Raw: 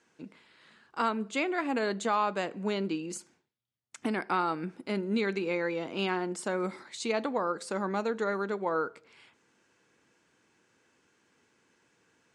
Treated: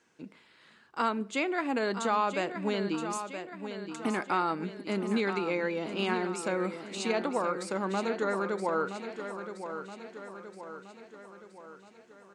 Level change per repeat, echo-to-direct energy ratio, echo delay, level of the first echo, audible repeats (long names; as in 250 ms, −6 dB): −5.5 dB, −7.5 dB, 972 ms, −9.0 dB, 5